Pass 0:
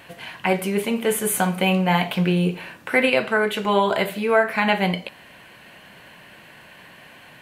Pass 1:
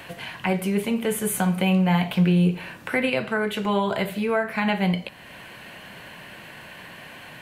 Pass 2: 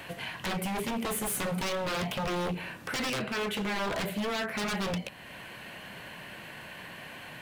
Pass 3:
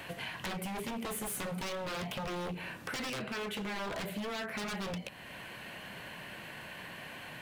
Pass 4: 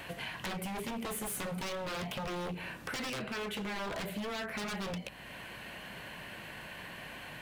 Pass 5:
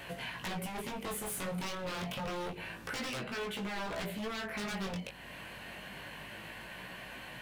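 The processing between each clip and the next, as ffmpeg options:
-filter_complex "[0:a]acrossover=split=180[s0][s1];[s1]acompressor=threshold=0.00447:ratio=1.5[s2];[s0][s2]amix=inputs=2:normalize=0,volume=1.88"
-af "aeval=exprs='0.0631*(abs(mod(val(0)/0.0631+3,4)-2)-1)':c=same,volume=0.75"
-af "acompressor=threshold=0.02:ratio=6,volume=0.841"
-af "aeval=exprs='val(0)+0.000794*(sin(2*PI*50*n/s)+sin(2*PI*2*50*n/s)/2+sin(2*PI*3*50*n/s)/3+sin(2*PI*4*50*n/s)/4+sin(2*PI*5*50*n/s)/5)':c=same"
-af "flanger=delay=16:depth=6.1:speed=0.28,volume=1.33"

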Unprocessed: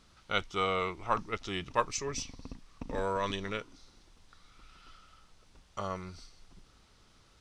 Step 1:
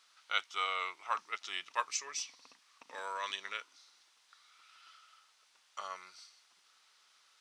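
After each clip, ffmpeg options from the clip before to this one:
-af "highpass=1200"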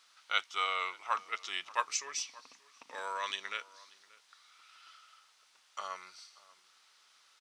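-filter_complex "[0:a]asplit=2[s0][s1];[s1]adelay=583.1,volume=0.0891,highshelf=f=4000:g=-13.1[s2];[s0][s2]amix=inputs=2:normalize=0,volume=1.26"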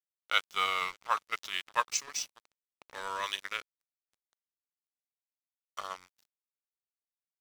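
-af "aeval=exprs='sgn(val(0))*max(abs(val(0))-0.00531,0)':c=same,volume=1.58"

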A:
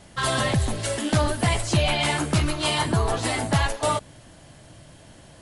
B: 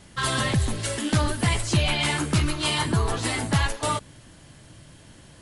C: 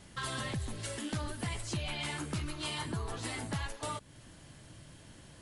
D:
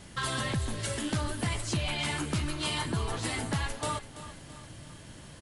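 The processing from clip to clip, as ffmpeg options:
-af "equalizer=f=670:w=2:g=-7"
-af "acompressor=threshold=0.0158:ratio=2,volume=0.562"
-af "aecho=1:1:334|668|1002|1336|1670:0.2|0.0998|0.0499|0.0249|0.0125,volume=1.88"

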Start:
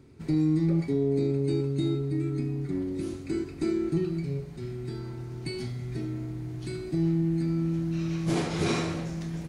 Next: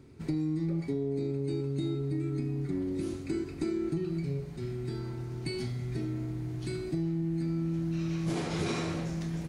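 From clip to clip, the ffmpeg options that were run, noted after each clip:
-af "acompressor=threshold=0.0398:ratio=6"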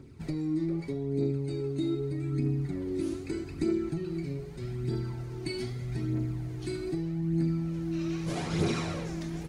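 -af "aphaser=in_gain=1:out_gain=1:delay=3.4:decay=0.45:speed=0.81:type=triangular"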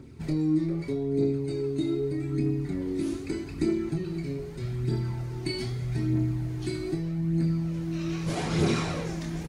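-filter_complex "[0:a]asplit=2[s0][s1];[s1]adelay=26,volume=0.473[s2];[s0][s2]amix=inputs=2:normalize=0,volume=1.41"

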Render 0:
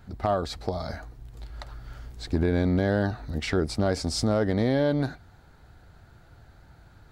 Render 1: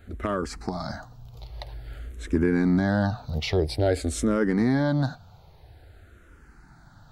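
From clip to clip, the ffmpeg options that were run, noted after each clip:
-filter_complex "[0:a]asplit=2[s0][s1];[s1]afreqshift=-0.5[s2];[s0][s2]amix=inputs=2:normalize=1,volume=1.68"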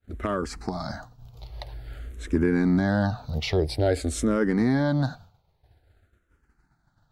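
-af "agate=range=0.0224:threshold=0.01:ratio=3:detection=peak"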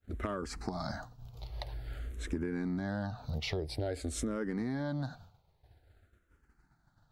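-af "acompressor=threshold=0.0316:ratio=6,volume=0.75"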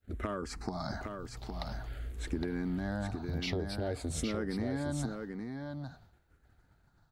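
-af "aecho=1:1:813:0.531"

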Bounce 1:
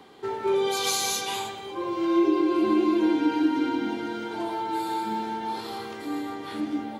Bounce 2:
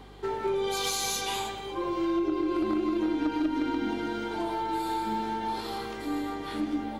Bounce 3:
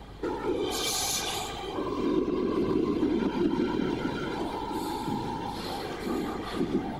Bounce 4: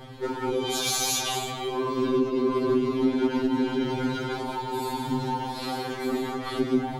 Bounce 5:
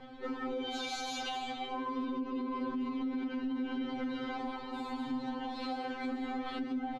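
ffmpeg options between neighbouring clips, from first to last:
-filter_complex "[0:a]acrossover=split=190[s0][s1];[s1]acompressor=threshold=0.0501:ratio=10[s2];[s0][s2]amix=inputs=2:normalize=0,aeval=exprs='0.112*(cos(1*acos(clip(val(0)/0.112,-1,1)))-cos(1*PI/2))+0.02*(cos(2*acos(clip(val(0)/0.112,-1,1)))-cos(2*PI/2))+0.00891*(cos(4*acos(clip(val(0)/0.112,-1,1)))-cos(4*PI/2))':c=same,aeval=exprs='val(0)+0.00316*(sin(2*PI*50*n/s)+sin(2*PI*2*50*n/s)/2+sin(2*PI*3*50*n/s)/3+sin(2*PI*4*50*n/s)/4+sin(2*PI*5*50*n/s)/5)':c=same"
-filter_complex "[0:a]afftfilt=real='hypot(re,im)*cos(2*PI*random(0))':imag='hypot(re,im)*sin(2*PI*random(1))':win_size=512:overlap=0.75,acrossover=split=400|3000[s0][s1][s2];[s1]acompressor=threshold=0.00794:ratio=8[s3];[s0][s3][s2]amix=inputs=3:normalize=0,aeval=exprs='val(0)+0.00158*(sin(2*PI*50*n/s)+sin(2*PI*2*50*n/s)/2+sin(2*PI*3*50*n/s)/3+sin(2*PI*4*50*n/s)/4+sin(2*PI*5*50*n/s)/5)':c=same,volume=2.51"
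-af "afftfilt=real='re*2.45*eq(mod(b,6),0)':imag='im*2.45*eq(mod(b,6),0)':win_size=2048:overlap=0.75,volume=1.88"
-af "lowpass=3500,aecho=1:1:3.9:0.89,alimiter=limit=0.0891:level=0:latency=1:release=121,volume=0.398"

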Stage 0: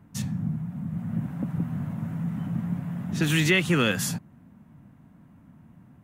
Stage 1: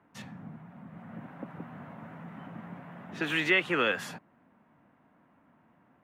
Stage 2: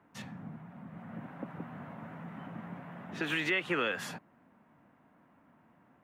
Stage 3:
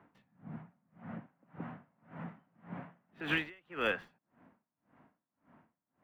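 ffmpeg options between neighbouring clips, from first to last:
-filter_complex "[0:a]acrossover=split=340 3200:gain=0.0891 1 0.112[s0][s1][s2];[s0][s1][s2]amix=inputs=3:normalize=0"
-af "alimiter=limit=0.0891:level=0:latency=1:release=150"
-filter_complex "[0:a]acrossover=split=4100[s0][s1];[s1]acrusher=samples=33:mix=1:aa=0.000001[s2];[s0][s2]amix=inputs=2:normalize=0,aeval=exprs='val(0)*pow(10,-33*(0.5-0.5*cos(2*PI*1.8*n/s))/20)':c=same,volume=1.33"

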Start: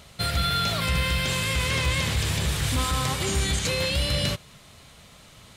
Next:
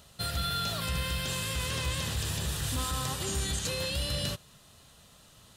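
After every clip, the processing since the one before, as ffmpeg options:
-af "highshelf=f=7800:g=7,bandreject=f=2200:w=5.3,volume=0.422"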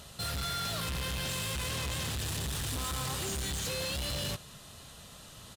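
-af "asoftclip=type=hard:threshold=0.0158,aresample=32000,aresample=44100,asoftclip=type=tanh:threshold=0.0119,volume=2.11"

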